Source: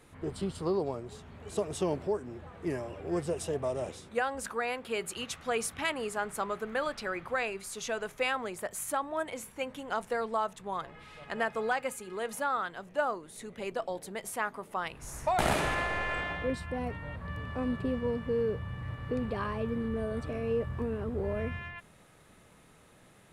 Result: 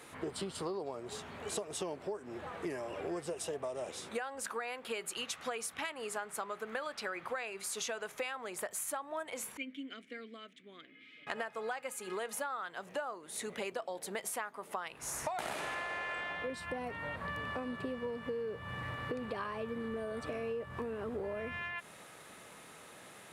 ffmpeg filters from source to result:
-filter_complex "[0:a]asettb=1/sr,asplit=3[a][b][c];[a]atrim=end=9.574[d];[b]atrim=start=9.57:end=11.27,asetpts=PTS-STARTPTS,afade=t=in:d=0.004:c=qsin,afade=t=out:st=1.696:d=0.004:c=qsin,asplit=3[e][f][g];[e]bandpass=f=270:t=q:w=8,volume=0dB[h];[f]bandpass=f=2.29k:t=q:w=8,volume=-6dB[i];[g]bandpass=f=3.01k:t=q:w=8,volume=-9dB[j];[h][i][j]amix=inputs=3:normalize=0[k];[c]atrim=start=11.266[l];[d][k]acrossfade=d=0.004:c1=hsin:c2=qsin[m];[m][l]acrossfade=d=0.004:c1=qsin:c2=hsin,highpass=f=500:p=1,acompressor=threshold=-44dB:ratio=12,volume=8.5dB"

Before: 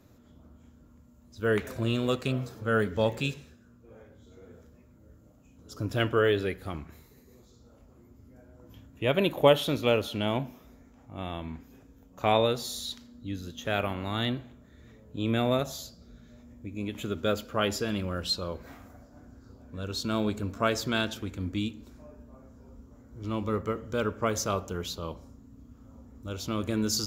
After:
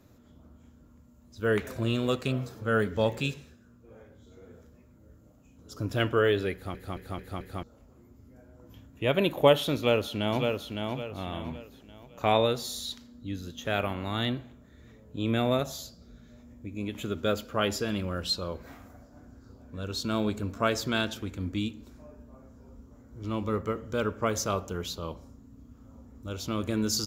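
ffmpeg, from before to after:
-filter_complex "[0:a]asplit=2[a][b];[b]afade=t=in:st=9.76:d=0.01,afade=t=out:st=10.46:d=0.01,aecho=0:1:560|1120|1680|2240:0.595662|0.208482|0.0729686|0.025539[c];[a][c]amix=inputs=2:normalize=0,asplit=6[d][e][f][g][h][i];[d]atrim=end=6.752[j];[e]atrim=start=6.528:end=6.752[k];[f]atrim=start=6.528:end=6.752[l];[g]atrim=start=6.528:end=6.752[m];[h]atrim=start=6.528:end=6.752[n];[i]atrim=start=7.628[o];[j][k]acrossfade=d=0.004:c1=hsin:c2=hsin[p];[p][l]acrossfade=d=0.004:c1=hsin:c2=hsin[q];[q][m]acrossfade=d=0.004:c1=hsin:c2=hsin[r];[r][n]acrossfade=d=0.004:c1=hsin:c2=hsin[s];[s][o]acrossfade=d=0.004:c1=hsin:c2=hsin"

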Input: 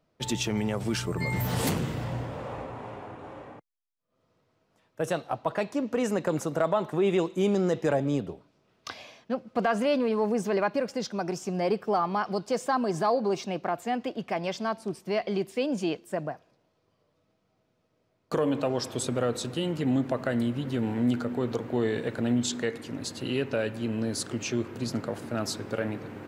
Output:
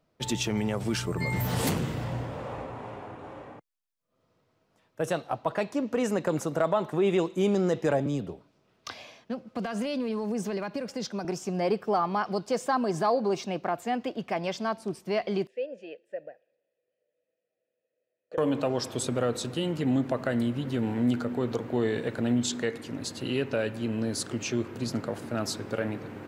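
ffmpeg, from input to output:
-filter_complex "[0:a]asettb=1/sr,asplit=3[a][b][c];[a]atrim=end=8.064[d];[b]atrim=start=8.06:end=11.25,asetpts=PTS-STARTPTS,afade=t=in:d=0.004:c=qsin,afade=t=out:st=3.186:d=0.004:c=qsin,acrossover=split=250|3000[e][f][g];[f]acompressor=threshold=-32dB:ratio=6:attack=3.2:release=140:knee=2.83:detection=peak[h];[e][h][g]amix=inputs=3:normalize=0[i];[c]atrim=start=11.246[j];[d][i]acrossfade=d=0.004:c1=hsin:c2=qsin[k];[k][j]acrossfade=d=0.004:c1=qsin:c2=hsin,asettb=1/sr,asplit=3[l][m][n];[l]atrim=end=15.474[o];[m]atrim=start=15.47:end=18.38,asetpts=PTS-STARTPTS,afade=t=in:d=0.004:c=qsin,afade=t=out:st=2.906:d=0.004:c=qsin,asplit=3[p][q][r];[p]bandpass=f=530:t=q:w=8,volume=0dB[s];[q]bandpass=f=1.84k:t=q:w=8,volume=-6dB[t];[r]bandpass=f=2.48k:t=q:w=8,volume=-9dB[u];[s][t][u]amix=inputs=3:normalize=0[v];[n]atrim=start=18.376[w];[o][v]acrossfade=d=0.004:c1=hsin:c2=qsin[x];[x][w]acrossfade=d=0.004:c1=qsin:c2=hsin"

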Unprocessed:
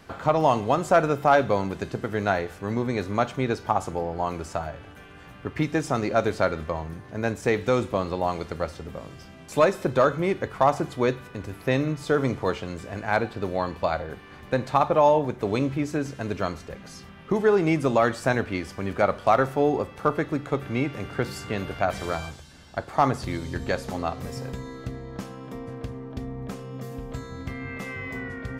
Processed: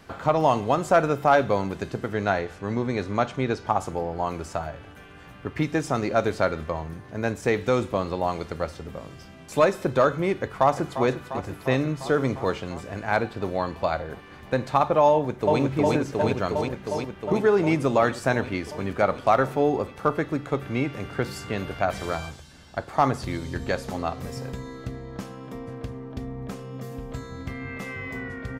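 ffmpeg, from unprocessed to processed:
-filter_complex "[0:a]asettb=1/sr,asplit=3[a][b][c];[a]atrim=end=2.124[d];[b]atrim=start=2.12:end=3.7,asetpts=PTS-STARTPTS,afade=t=in:d=0.004:c=qsin,afade=t=out:st=1.576:d=0.004:c=qsin,lowpass=8.1k[e];[c]atrim=start=3.696[f];[d][e]acrossfade=d=0.004:c1=hsin:c2=qsin[g];[g][f]acrossfade=d=0.004:c1=qsin:c2=hsin,asplit=2[h][i];[i]afade=t=in:st=10.37:d=0.01,afade=t=out:st=11.04:d=0.01,aecho=0:1:350|700|1050|1400|1750|2100|2450|2800|3150|3500|3850|4200:0.281838|0.211379|0.158534|0.118901|0.0891754|0.0668815|0.0501612|0.0376209|0.0282157|0.0211617|0.0158713|0.0119035[j];[h][j]amix=inputs=2:normalize=0,asplit=2[k][l];[l]afade=t=in:st=15.11:d=0.01,afade=t=out:st=15.6:d=0.01,aecho=0:1:360|720|1080|1440|1800|2160|2520|2880|3240|3600|3960|4320:1|0.8|0.64|0.512|0.4096|0.32768|0.262144|0.209715|0.167772|0.134218|0.107374|0.0858993[m];[k][m]amix=inputs=2:normalize=0"

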